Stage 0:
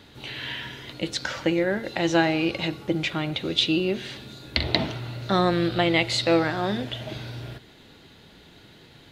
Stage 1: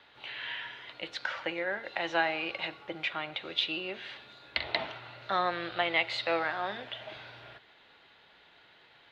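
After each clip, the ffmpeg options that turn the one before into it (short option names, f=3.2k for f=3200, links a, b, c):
-filter_complex "[0:a]acrossover=split=590 3600:gain=0.1 1 0.0708[a][b][c];[a][b][c]amix=inputs=3:normalize=0,volume=-2.5dB"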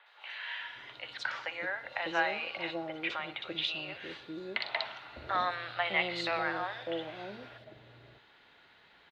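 -filter_complex "[0:a]acrossover=split=570|3300[a][b][c];[c]adelay=60[d];[a]adelay=600[e];[e][b][d]amix=inputs=3:normalize=0"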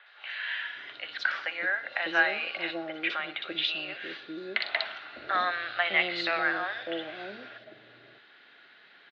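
-af "highpass=250,equalizer=f=500:t=q:w=4:g=-4,equalizer=f=930:t=q:w=4:g=-10,equalizer=f=1.6k:t=q:w=4:g=5,lowpass=f=5.2k:w=0.5412,lowpass=f=5.2k:w=1.3066,volume=4.5dB"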